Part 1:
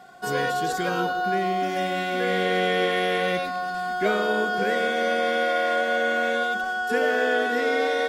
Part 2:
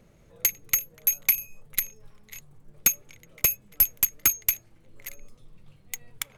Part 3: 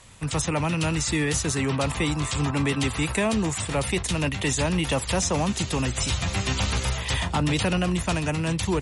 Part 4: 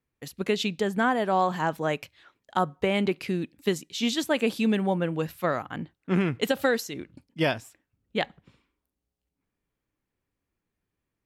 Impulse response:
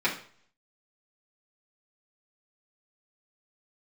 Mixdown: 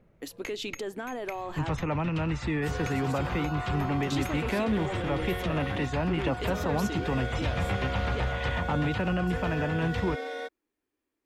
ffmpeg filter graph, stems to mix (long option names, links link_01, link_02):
-filter_complex "[0:a]adelay=2400,volume=-12dB[link_01];[1:a]volume=-4dB[link_02];[2:a]adelay=1350,volume=-0.5dB[link_03];[3:a]lowshelf=frequency=220:width_type=q:width=3:gain=-9.5,acompressor=threshold=-27dB:ratio=2.5,volume=-1dB,asplit=3[link_04][link_05][link_06];[link_04]atrim=end=1.71,asetpts=PTS-STARTPTS,afade=type=out:start_time=1.706:duration=0.004:curve=hsin[link_07];[link_05]atrim=start=1.71:end=4.1,asetpts=PTS-STARTPTS,volume=0[link_08];[link_06]atrim=start=4.1,asetpts=PTS-STARTPTS,afade=type=in:duration=0.004:curve=hsin[link_09];[link_07][link_08][link_09]concat=n=3:v=0:a=1[link_10];[link_02][link_03]amix=inputs=2:normalize=0,lowpass=2100,alimiter=limit=-20.5dB:level=0:latency=1:release=145,volume=0dB[link_11];[link_01][link_10]amix=inputs=2:normalize=0,asoftclip=type=tanh:threshold=-17dB,alimiter=level_in=3dB:limit=-24dB:level=0:latency=1:release=13,volume=-3dB,volume=0dB[link_12];[link_11][link_12]amix=inputs=2:normalize=0"